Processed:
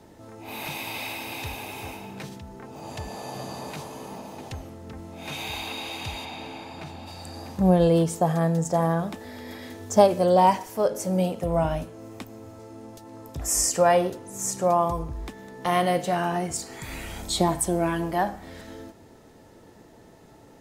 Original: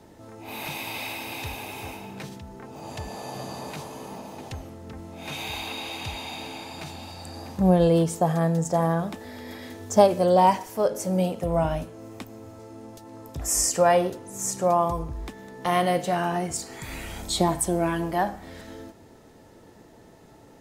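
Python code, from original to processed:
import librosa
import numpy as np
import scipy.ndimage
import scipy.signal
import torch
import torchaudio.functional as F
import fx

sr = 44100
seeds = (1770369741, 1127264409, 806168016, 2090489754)

y = fx.high_shelf(x, sr, hz=fx.line((6.24, 5800.0), (7.06, 3400.0)), db=-11.5, at=(6.24, 7.06), fade=0.02)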